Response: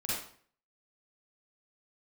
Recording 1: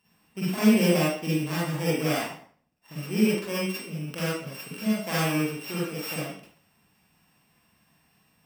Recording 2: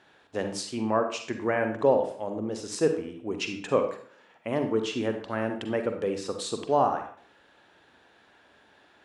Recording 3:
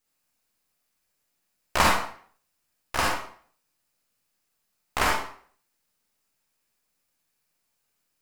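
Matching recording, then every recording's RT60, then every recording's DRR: 1; 0.50, 0.50, 0.50 seconds; −8.5, 5.5, −2.5 decibels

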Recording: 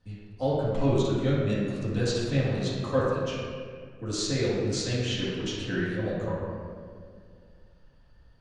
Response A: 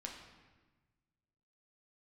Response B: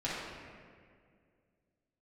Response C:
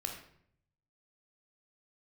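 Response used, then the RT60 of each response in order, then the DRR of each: B; 1.3, 2.1, 0.65 seconds; 0.0, −9.5, 2.5 decibels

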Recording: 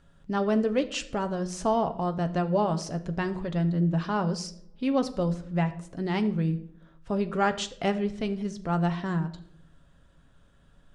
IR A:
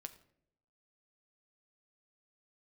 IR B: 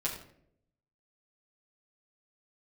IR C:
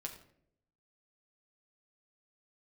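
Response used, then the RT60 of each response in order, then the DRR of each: A; non-exponential decay, 0.70 s, 0.70 s; 7.5, −7.0, 0.5 decibels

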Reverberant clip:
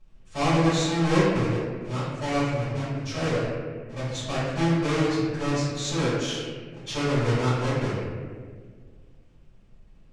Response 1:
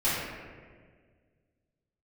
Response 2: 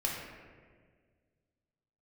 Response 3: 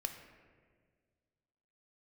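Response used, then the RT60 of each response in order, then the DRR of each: 1; 1.7, 1.7, 1.7 seconds; −13.0, −3.5, 5.5 decibels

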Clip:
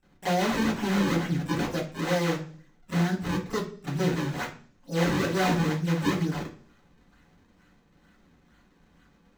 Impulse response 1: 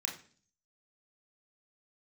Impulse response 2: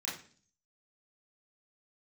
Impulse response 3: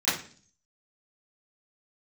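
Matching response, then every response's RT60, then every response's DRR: 3; 0.45, 0.45, 0.45 seconds; 0.0, −7.5, −17.5 decibels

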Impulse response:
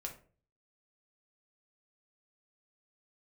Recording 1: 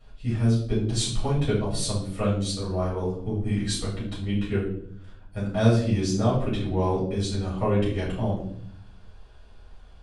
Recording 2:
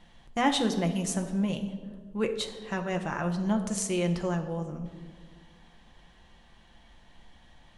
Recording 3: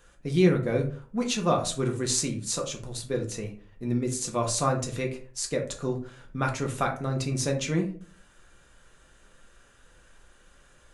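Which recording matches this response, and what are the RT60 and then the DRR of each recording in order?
3; 0.60, 1.7, 0.40 seconds; −8.5, 4.0, 1.0 decibels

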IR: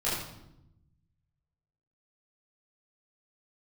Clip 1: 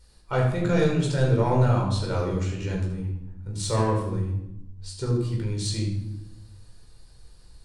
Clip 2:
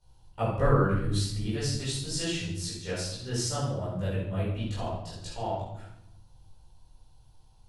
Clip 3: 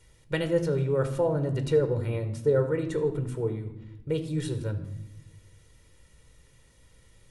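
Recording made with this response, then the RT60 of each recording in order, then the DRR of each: 2; 0.85, 0.85, 0.90 seconds; −2.0, −11.0, 7.5 decibels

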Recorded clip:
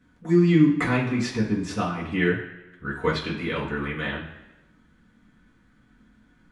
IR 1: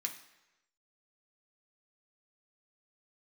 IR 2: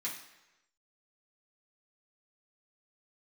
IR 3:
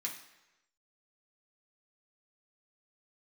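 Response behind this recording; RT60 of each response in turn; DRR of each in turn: 2; 1.0, 1.0, 1.0 seconds; 2.0, −7.0, −2.5 decibels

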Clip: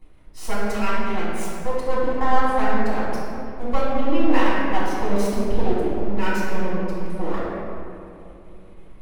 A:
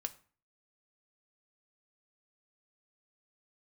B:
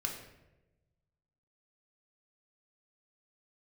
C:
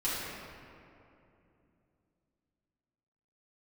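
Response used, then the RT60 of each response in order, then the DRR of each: C; 0.40, 1.0, 2.8 seconds; 6.5, 1.0, −11.0 decibels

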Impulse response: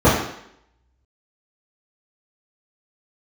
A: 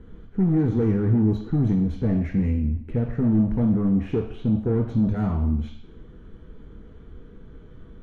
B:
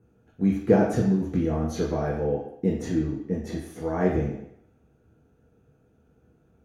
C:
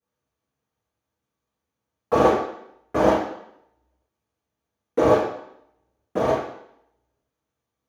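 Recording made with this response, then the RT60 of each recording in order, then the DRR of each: C; 0.70, 0.70, 0.70 seconds; 2.5, −4.5, −13.5 decibels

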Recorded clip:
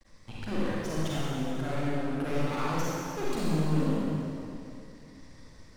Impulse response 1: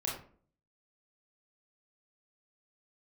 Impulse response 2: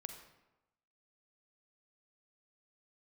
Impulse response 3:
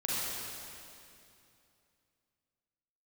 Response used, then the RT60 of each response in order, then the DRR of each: 3; 0.45, 1.0, 2.7 seconds; −4.0, 6.0, −7.5 decibels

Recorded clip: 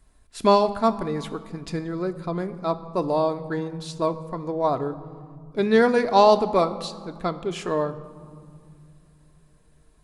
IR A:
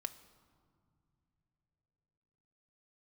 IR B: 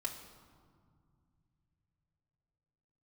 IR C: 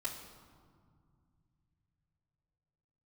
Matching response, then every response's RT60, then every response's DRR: A; non-exponential decay, 2.1 s, 2.0 s; 7.0, −2.5, −8.5 decibels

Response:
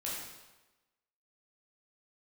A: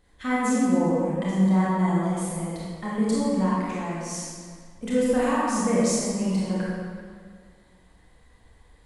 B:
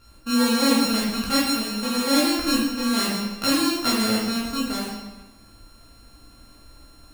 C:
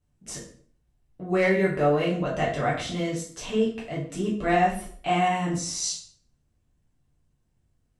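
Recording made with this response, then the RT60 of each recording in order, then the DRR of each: B; 2.0, 1.1, 0.50 seconds; −8.0, −6.5, −6.5 decibels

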